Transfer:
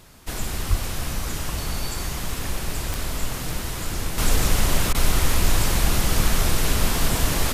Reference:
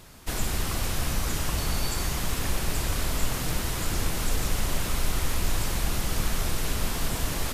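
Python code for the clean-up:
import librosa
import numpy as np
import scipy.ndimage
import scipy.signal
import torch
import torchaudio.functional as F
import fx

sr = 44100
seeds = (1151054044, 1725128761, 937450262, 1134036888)

y = fx.fix_declick_ar(x, sr, threshold=10.0)
y = fx.highpass(y, sr, hz=140.0, slope=24, at=(0.69, 0.81), fade=0.02)
y = fx.fix_interpolate(y, sr, at_s=(4.93,), length_ms=15.0)
y = fx.gain(y, sr, db=fx.steps((0.0, 0.0), (4.18, -7.0)))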